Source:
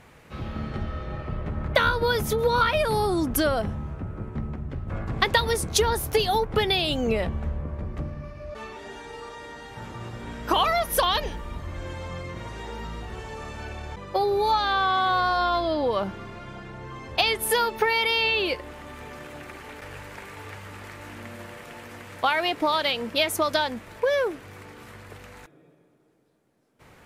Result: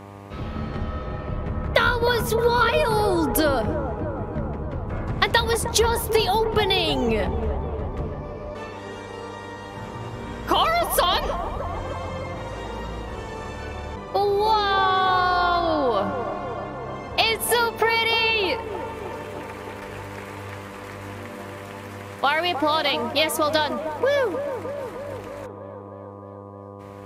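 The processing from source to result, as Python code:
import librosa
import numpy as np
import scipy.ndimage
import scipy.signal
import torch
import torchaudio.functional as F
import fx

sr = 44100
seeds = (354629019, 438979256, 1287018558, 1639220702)

y = fx.dmg_buzz(x, sr, base_hz=100.0, harmonics=12, level_db=-43.0, tilt_db=-3, odd_only=False)
y = fx.echo_wet_bandpass(y, sr, ms=308, feedback_pct=69, hz=570.0, wet_db=-8.0)
y = y * 10.0 ** (2.0 / 20.0)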